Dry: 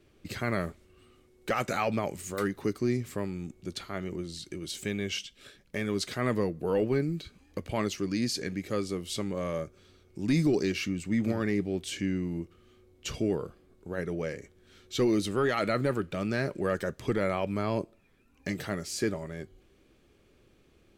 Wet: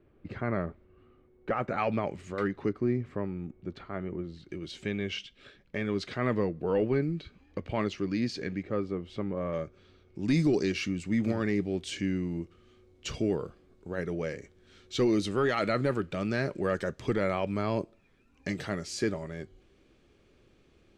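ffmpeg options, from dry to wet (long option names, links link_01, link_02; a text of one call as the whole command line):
ffmpeg -i in.wav -af "asetnsamples=nb_out_samples=441:pad=0,asendcmd='1.78 lowpass f 2900;2.69 lowpass f 1700;4.49 lowpass f 3400;8.63 lowpass f 1700;9.53 lowpass f 3800;10.23 lowpass f 7100',lowpass=1500" out.wav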